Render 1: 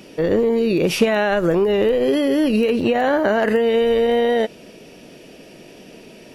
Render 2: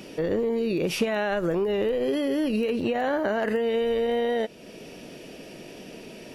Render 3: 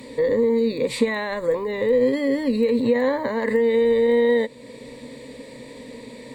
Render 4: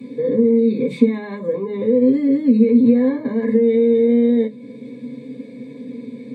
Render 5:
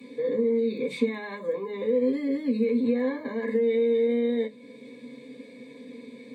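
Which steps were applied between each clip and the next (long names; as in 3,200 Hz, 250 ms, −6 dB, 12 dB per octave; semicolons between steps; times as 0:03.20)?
downward compressor 1.5 to 1, threshold −37 dBFS, peak gain reduction 9.5 dB
EQ curve with evenly spaced ripples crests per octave 1, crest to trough 18 dB
convolution reverb RT60 0.15 s, pre-delay 3 ms, DRR −3.5 dB; level −16.5 dB
high-pass filter 1,000 Hz 6 dB per octave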